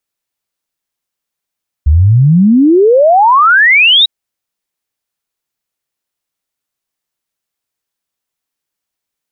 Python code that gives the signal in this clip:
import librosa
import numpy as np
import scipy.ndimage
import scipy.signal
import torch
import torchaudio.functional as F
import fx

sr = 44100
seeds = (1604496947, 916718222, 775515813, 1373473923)

y = fx.ess(sr, length_s=2.2, from_hz=69.0, to_hz=3900.0, level_db=-3.5)